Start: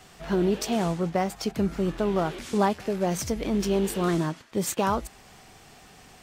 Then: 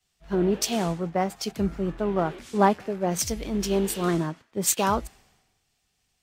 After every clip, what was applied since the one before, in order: three-band expander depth 100%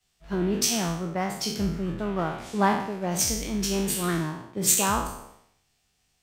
spectral trails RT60 0.67 s; dynamic EQ 520 Hz, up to -7 dB, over -36 dBFS, Q 0.83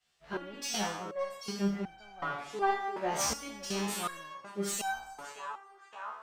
narrowing echo 0.568 s, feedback 71%, band-pass 1200 Hz, level -12 dB; overdrive pedal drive 16 dB, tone 2800 Hz, clips at -7 dBFS; stepped resonator 2.7 Hz 73–770 Hz

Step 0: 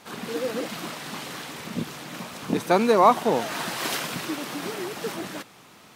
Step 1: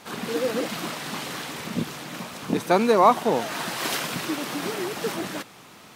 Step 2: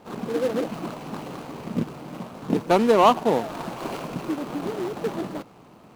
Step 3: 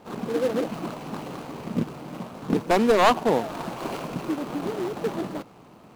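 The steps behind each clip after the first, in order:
vocal rider within 3 dB 2 s
median filter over 25 samples; gain +2 dB
one-sided fold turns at -12 dBFS

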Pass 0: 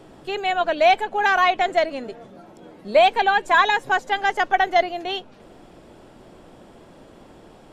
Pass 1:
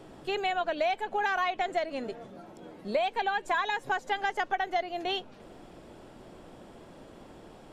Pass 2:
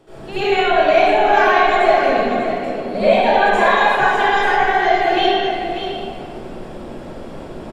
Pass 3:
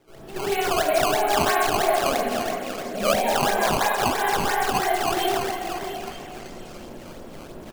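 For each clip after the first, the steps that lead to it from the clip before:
compressor 6:1, threshold -23 dBFS, peak gain reduction 11.5 dB; gain -3 dB
echo 0.592 s -9 dB; reverb RT60 2.4 s, pre-delay 69 ms, DRR -19 dB; gain -3.5 dB
decimation with a swept rate 14×, swing 160% 3 Hz; delay with a stepping band-pass 0.46 s, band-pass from 850 Hz, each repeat 1.4 oct, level -9 dB; gain -8 dB

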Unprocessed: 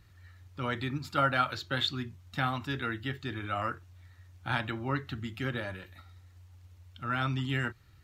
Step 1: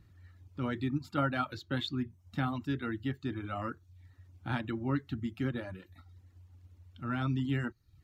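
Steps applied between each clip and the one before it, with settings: bell 470 Hz +7 dB 2.3 oct; reverb removal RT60 0.51 s; resonant low shelf 360 Hz +6.5 dB, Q 1.5; gain -8 dB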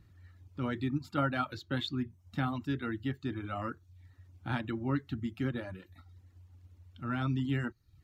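nothing audible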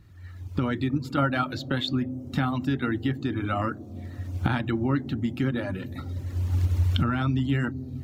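recorder AGC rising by 24 dB/s; on a send at -9.5 dB: Gaussian blur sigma 15 samples + reverb RT60 5.0 s, pre-delay 83 ms; on the sum: gain +6 dB

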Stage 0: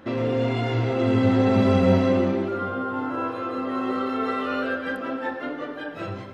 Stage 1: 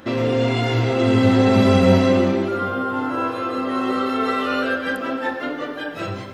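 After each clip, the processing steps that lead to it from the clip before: high shelf 3700 Hz +10 dB; gain +4 dB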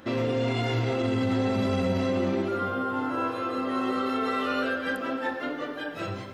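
limiter -12.5 dBFS, peak gain reduction 9.5 dB; gain -5.5 dB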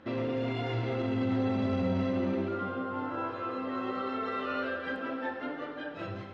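air absorption 170 m; reverb RT60 2.6 s, pre-delay 7 ms, DRR 9 dB; gain -5 dB

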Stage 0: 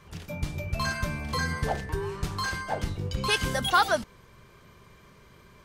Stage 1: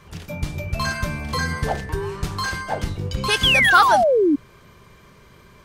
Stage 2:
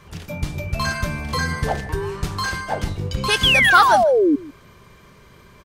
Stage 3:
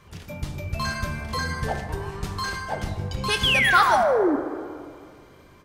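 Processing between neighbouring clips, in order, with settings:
painted sound fall, 3.43–4.36, 270–3500 Hz -21 dBFS; gain +5 dB
echo 0.151 s -20.5 dB; gain +1 dB
plate-style reverb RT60 2.2 s, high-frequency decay 0.4×, DRR 7 dB; gain -5.5 dB

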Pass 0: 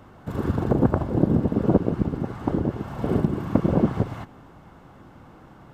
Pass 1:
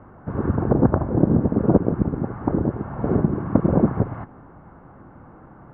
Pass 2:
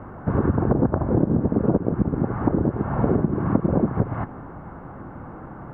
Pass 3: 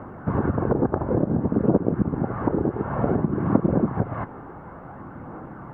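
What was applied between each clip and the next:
LPF 1700 Hz 24 dB/oct; gain +2.5 dB
compressor 6:1, threshold -24 dBFS, peak gain reduction 14 dB; gain +7.5 dB
phaser 0.56 Hz, delay 2.6 ms, feedback 26%; low shelf 90 Hz -10.5 dB

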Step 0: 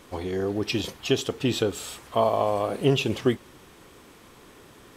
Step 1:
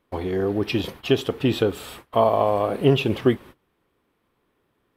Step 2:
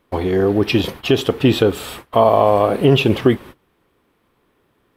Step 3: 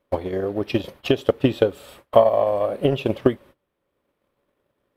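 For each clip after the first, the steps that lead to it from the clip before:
gate -43 dBFS, range -23 dB; bell 6800 Hz -13.5 dB 1.2 oct; gain +4 dB
maximiser +8.5 dB; gain -1 dB
bell 570 Hz +13 dB 0.23 oct; transient shaper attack +10 dB, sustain -3 dB; gain -12.5 dB

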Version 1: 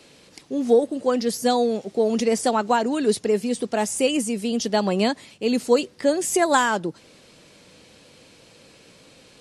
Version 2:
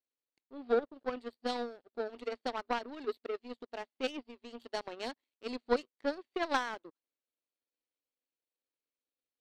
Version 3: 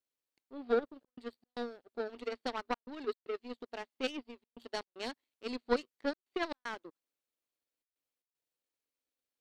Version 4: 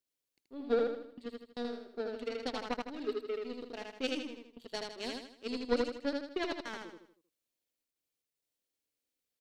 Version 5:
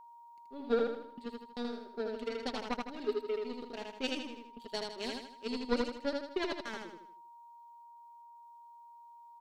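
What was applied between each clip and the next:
FFT band-pass 230–4700 Hz; power-law curve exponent 2; gain -6.5 dB
dynamic EQ 660 Hz, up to -4 dB, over -46 dBFS, Q 1.5; step gate "xxxxxxxx.xx.x" 115 bpm -60 dB; gain +1 dB
bell 1100 Hz -7 dB 1.8 oct; on a send: feedback echo 79 ms, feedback 42%, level -3 dB; on the sum: gain +2 dB
comb 5 ms, depth 36%; whine 940 Hz -52 dBFS

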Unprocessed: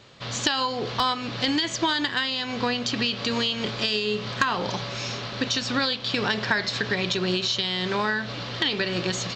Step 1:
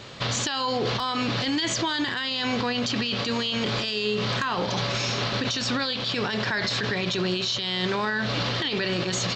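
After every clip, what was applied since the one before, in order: in parallel at -3 dB: negative-ratio compressor -32 dBFS; on the sum: limiter -20 dBFS, peak gain reduction 11 dB; gain +2.5 dB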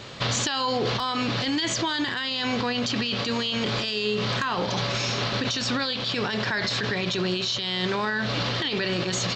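vocal rider 2 s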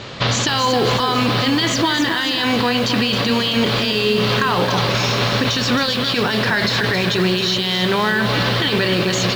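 air absorption 58 m; lo-fi delay 0.268 s, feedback 55%, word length 7-bit, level -7 dB; gain +8.5 dB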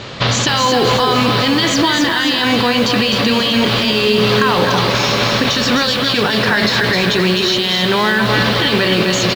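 echo 0.254 s -7 dB; gain +3 dB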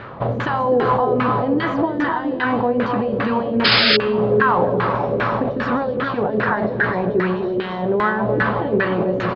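LFO low-pass saw down 2.5 Hz 420–1700 Hz; painted sound noise, 3.64–3.97, 1200–5200 Hz -9 dBFS; gain -6 dB

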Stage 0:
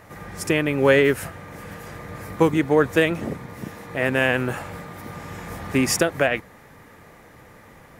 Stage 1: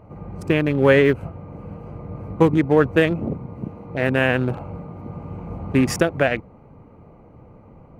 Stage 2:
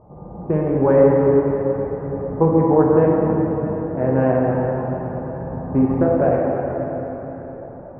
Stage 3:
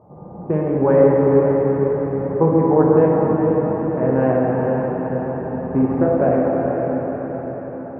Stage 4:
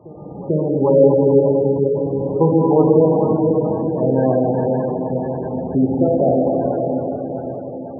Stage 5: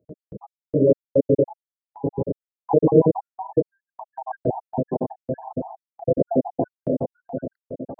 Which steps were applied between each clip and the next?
Wiener smoothing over 25 samples; tone controls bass +4 dB, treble -7 dB; gain +1.5 dB
ladder low-pass 1100 Hz, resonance 35%; plate-style reverb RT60 4.5 s, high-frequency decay 0.7×, DRR -4 dB; gain +4 dB
HPF 98 Hz 12 dB/oct; diffused feedback echo 0.481 s, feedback 52%, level -6 dB
spectral gate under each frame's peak -20 dB strong; reverse echo 0.443 s -19.5 dB; gain +1 dB
random spectral dropouts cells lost 77%; gate with hold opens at -38 dBFS

